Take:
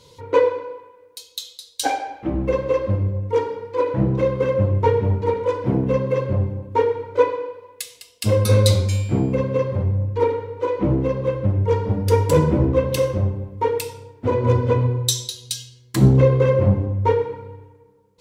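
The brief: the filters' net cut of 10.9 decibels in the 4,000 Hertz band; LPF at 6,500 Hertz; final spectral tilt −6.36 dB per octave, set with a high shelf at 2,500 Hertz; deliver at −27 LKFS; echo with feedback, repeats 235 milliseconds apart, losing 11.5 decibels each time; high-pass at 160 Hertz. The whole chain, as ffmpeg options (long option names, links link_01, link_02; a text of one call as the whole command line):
ffmpeg -i in.wav -af "highpass=160,lowpass=6500,highshelf=frequency=2500:gain=-3.5,equalizer=frequency=4000:width_type=o:gain=-9,aecho=1:1:235|470|705:0.266|0.0718|0.0194,volume=-4.5dB" out.wav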